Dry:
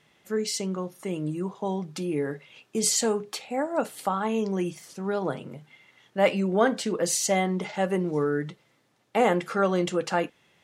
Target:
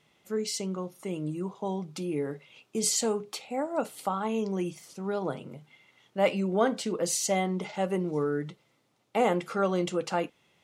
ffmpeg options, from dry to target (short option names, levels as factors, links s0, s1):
-af "equalizer=f=1700:t=o:w=0.24:g=-8,volume=0.708"